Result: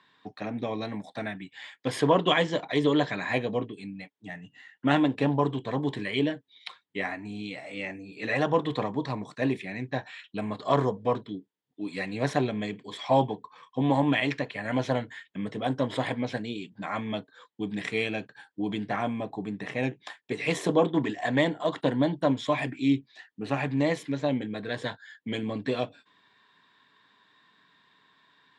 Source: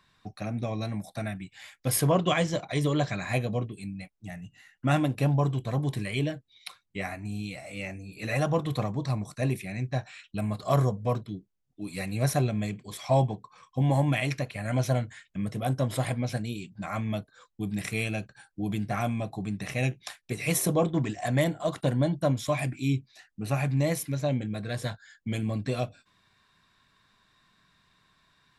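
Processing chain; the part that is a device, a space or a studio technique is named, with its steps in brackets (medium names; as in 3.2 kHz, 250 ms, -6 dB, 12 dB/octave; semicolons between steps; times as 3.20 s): 18.96–20.31 s: peaking EQ 3.8 kHz -5.5 dB 2.1 oct; full-range speaker at full volume (loudspeaker Doppler distortion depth 0.11 ms; cabinet simulation 170–7000 Hz, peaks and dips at 280 Hz +8 dB, 440 Hz +8 dB, 930 Hz +9 dB, 1.8 kHz +8 dB, 3.3 kHz +8 dB, 5.9 kHz -7 dB); trim -1.5 dB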